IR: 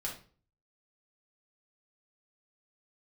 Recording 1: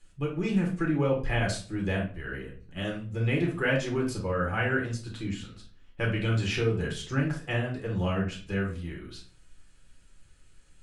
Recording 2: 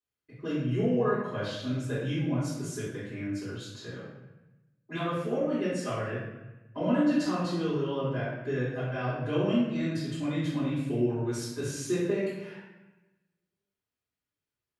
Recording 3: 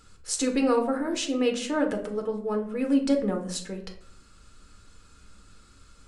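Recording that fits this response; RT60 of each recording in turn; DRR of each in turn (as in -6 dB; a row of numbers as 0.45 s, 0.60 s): 1; 0.40 s, 1.0 s, 0.65 s; -2.5 dB, -14.5 dB, 3.0 dB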